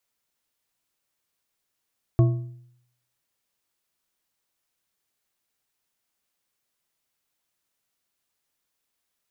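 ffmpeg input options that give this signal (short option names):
-f lavfi -i "aevalsrc='0.251*pow(10,-3*t/0.72)*sin(2*PI*123*t)+0.1*pow(10,-3*t/0.531)*sin(2*PI*339.1*t)+0.0398*pow(10,-3*t/0.434)*sin(2*PI*664.7*t)+0.0158*pow(10,-3*t/0.373)*sin(2*PI*1098.8*t)':d=1.55:s=44100"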